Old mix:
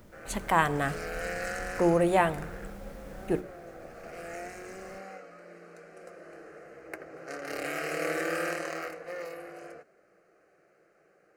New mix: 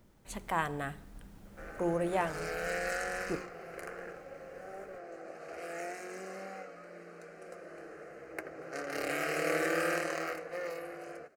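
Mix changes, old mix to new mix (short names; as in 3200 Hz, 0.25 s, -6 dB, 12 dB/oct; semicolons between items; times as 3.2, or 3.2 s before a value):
speech -8.0 dB; background: entry +1.45 s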